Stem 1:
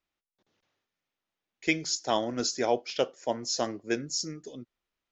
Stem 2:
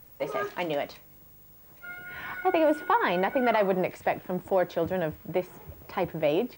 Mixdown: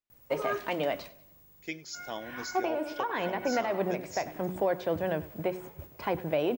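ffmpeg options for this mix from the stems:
ffmpeg -i stem1.wav -i stem2.wav -filter_complex "[0:a]volume=-11.5dB,asplit=3[link_01][link_02][link_03];[link_02]volume=-22.5dB[link_04];[1:a]agate=range=-7dB:threshold=-45dB:ratio=16:detection=peak,adelay=100,volume=1dB,asplit=2[link_05][link_06];[link_06]volume=-19.5dB[link_07];[link_03]apad=whole_len=294172[link_08];[link_05][link_08]sidechaincompress=threshold=-41dB:ratio=8:attack=16:release=573[link_09];[link_04][link_07]amix=inputs=2:normalize=0,aecho=0:1:96|192|288|384|480|576:1|0.41|0.168|0.0689|0.0283|0.0116[link_10];[link_01][link_09][link_10]amix=inputs=3:normalize=0,bandreject=frequency=183.9:width_type=h:width=4,bandreject=frequency=367.8:width_type=h:width=4,alimiter=limit=-18dB:level=0:latency=1:release=413" out.wav

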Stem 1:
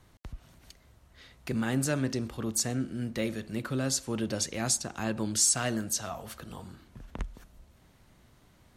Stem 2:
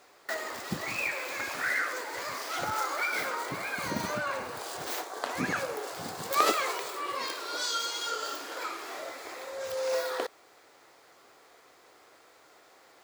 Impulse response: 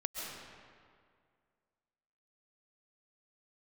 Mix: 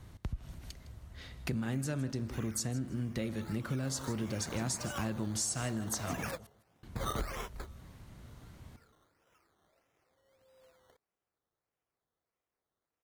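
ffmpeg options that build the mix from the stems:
-filter_complex "[0:a]volume=2dB,asplit=3[link_01][link_02][link_03];[link_01]atrim=end=6.31,asetpts=PTS-STARTPTS,afade=type=out:start_time=6.306:duration=0.004:curve=hsin[link_04];[link_02]atrim=start=6.31:end=6.83,asetpts=PTS-STARTPTS,volume=0[link_05];[link_03]atrim=start=6.83,asetpts=PTS-STARTPTS,afade=type=in:duration=0.004:curve=hsin[link_06];[link_04][link_05][link_06]concat=n=3:v=0:a=1,asplit=3[link_07][link_08][link_09];[link_08]volume=-16.5dB[link_10];[1:a]acrusher=samples=14:mix=1:aa=0.000001:lfo=1:lforange=8.4:lforate=1.6,adelay=700,volume=-5dB,afade=type=in:start_time=3.63:duration=0.5:silence=0.237137[link_11];[link_09]apad=whole_len=605850[link_12];[link_11][link_12]sidechaingate=range=-30dB:threshold=-48dB:ratio=16:detection=peak[link_13];[link_10]aecho=0:1:159|318|477:1|0.19|0.0361[link_14];[link_07][link_13][link_14]amix=inputs=3:normalize=0,equalizer=frequency=80:width=0.44:gain=9,acompressor=threshold=-33dB:ratio=5"

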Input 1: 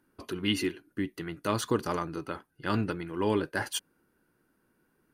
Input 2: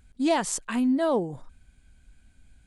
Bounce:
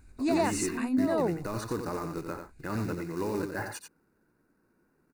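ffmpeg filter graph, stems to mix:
ffmpeg -i stem1.wav -i stem2.wav -filter_complex "[0:a]highshelf=frequency=2300:gain=-10.5,alimiter=level_in=1dB:limit=-24dB:level=0:latency=1:release=12,volume=-1dB,acrusher=bits=4:mode=log:mix=0:aa=0.000001,volume=1dB,asplit=3[link_01][link_02][link_03];[link_02]volume=-6.5dB[link_04];[1:a]volume=0.5dB,asplit=2[link_05][link_06];[link_06]volume=-5dB[link_07];[link_03]apad=whole_len=117385[link_08];[link_05][link_08]sidechaincompress=threshold=-46dB:ratio=3:attack=10:release=589[link_09];[link_04][link_07]amix=inputs=2:normalize=0,aecho=0:1:89:1[link_10];[link_01][link_09][link_10]amix=inputs=3:normalize=0,asuperstop=centerf=3200:order=4:qfactor=3.5" out.wav

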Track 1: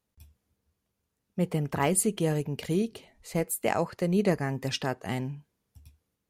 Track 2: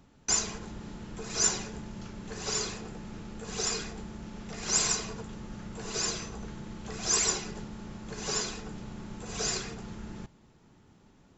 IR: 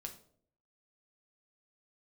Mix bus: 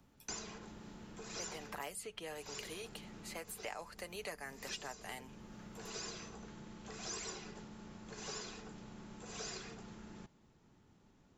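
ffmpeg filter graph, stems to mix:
-filter_complex "[0:a]highpass=860,aecho=1:1:6.8:0.39,volume=-1.5dB,asplit=2[link_01][link_02];[1:a]volume=-7.5dB[link_03];[link_02]apad=whole_len=501611[link_04];[link_03][link_04]sidechaincompress=threshold=-37dB:ratio=10:attack=12:release=752[link_05];[link_01][link_05]amix=inputs=2:normalize=0,acrossover=split=150|550|5200[link_06][link_07][link_08][link_09];[link_06]acompressor=threshold=-59dB:ratio=4[link_10];[link_07]acompressor=threshold=-50dB:ratio=4[link_11];[link_08]acompressor=threshold=-46dB:ratio=4[link_12];[link_09]acompressor=threshold=-53dB:ratio=4[link_13];[link_10][link_11][link_12][link_13]amix=inputs=4:normalize=0"

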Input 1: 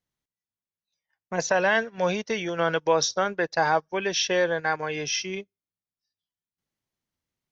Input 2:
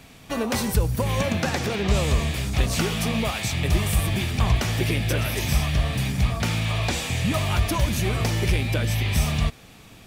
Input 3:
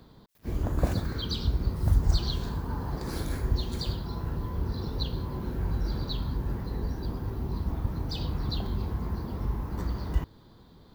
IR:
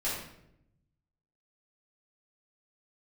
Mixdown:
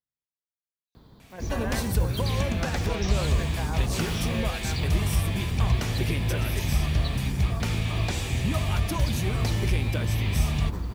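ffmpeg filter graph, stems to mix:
-filter_complex "[0:a]volume=-15dB[link_01];[1:a]adelay=1200,volume=-5.5dB[link_02];[2:a]acompressor=threshold=-29dB:ratio=6,adelay=950,volume=0dB[link_03];[link_01][link_02][link_03]amix=inputs=3:normalize=0,equalizer=frequency=80:width_type=o:width=1.7:gain=3.5"

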